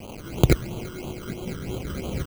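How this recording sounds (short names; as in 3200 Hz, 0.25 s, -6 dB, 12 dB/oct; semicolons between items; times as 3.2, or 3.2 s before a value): a quantiser's noise floor 6-bit, dither triangular; tremolo saw up 4.5 Hz, depth 35%; aliases and images of a low sample rate 1800 Hz, jitter 0%; phasing stages 12, 3 Hz, lowest notch 750–1800 Hz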